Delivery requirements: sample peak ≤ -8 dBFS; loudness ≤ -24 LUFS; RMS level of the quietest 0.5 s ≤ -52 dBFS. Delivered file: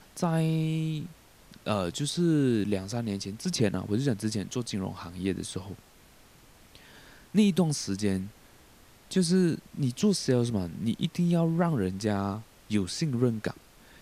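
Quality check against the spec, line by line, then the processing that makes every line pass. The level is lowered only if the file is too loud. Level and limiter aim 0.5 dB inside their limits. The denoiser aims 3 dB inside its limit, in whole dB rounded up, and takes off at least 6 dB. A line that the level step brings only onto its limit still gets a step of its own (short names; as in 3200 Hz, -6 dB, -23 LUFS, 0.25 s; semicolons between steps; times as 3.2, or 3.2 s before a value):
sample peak -11.5 dBFS: OK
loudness -29.0 LUFS: OK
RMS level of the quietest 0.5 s -56 dBFS: OK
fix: none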